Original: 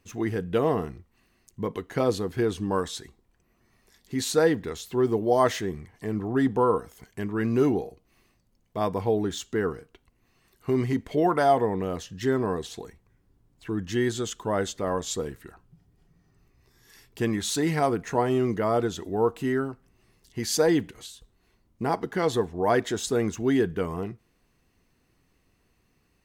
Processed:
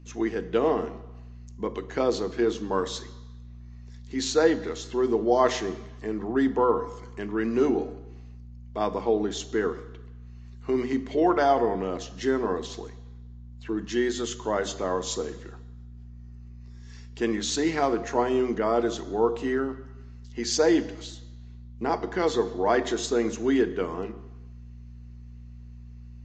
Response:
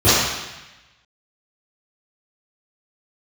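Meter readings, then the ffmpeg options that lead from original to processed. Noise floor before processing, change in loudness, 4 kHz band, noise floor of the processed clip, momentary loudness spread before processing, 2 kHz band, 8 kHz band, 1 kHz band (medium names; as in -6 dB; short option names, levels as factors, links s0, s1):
-68 dBFS, 0.0 dB, +1.0 dB, -44 dBFS, 12 LU, +0.5 dB, -0.5 dB, 0.0 dB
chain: -filter_complex "[0:a]highpass=f=210:w=0.5412,highpass=f=210:w=1.3066,aeval=exprs='val(0)+0.00501*(sin(2*PI*60*n/s)+sin(2*PI*2*60*n/s)/2+sin(2*PI*3*60*n/s)/3+sin(2*PI*4*60*n/s)/4+sin(2*PI*5*60*n/s)/5)':c=same,bandreject=f=50:t=h:w=6,bandreject=f=100:t=h:w=6,bandreject=f=150:t=h:w=6,bandreject=f=200:t=h:w=6,bandreject=f=250:t=h:w=6,bandreject=f=300:t=h:w=6,asplit=2[s0][s1];[1:a]atrim=start_sample=2205[s2];[s1][s2]afir=irnorm=-1:irlink=0,volume=0.0112[s3];[s0][s3]amix=inputs=2:normalize=0" -ar 16000 -c:a libvorbis -b:a 48k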